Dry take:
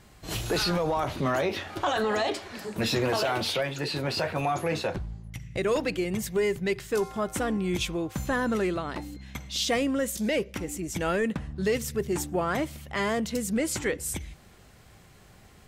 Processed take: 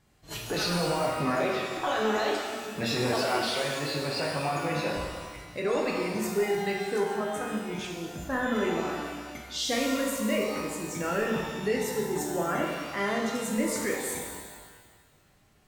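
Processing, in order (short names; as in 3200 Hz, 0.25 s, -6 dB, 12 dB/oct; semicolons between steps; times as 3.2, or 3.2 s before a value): spectral noise reduction 9 dB; 7.19–8.32 level quantiser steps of 9 dB; shimmer reverb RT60 1.5 s, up +12 st, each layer -8 dB, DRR -1.5 dB; gain -4.5 dB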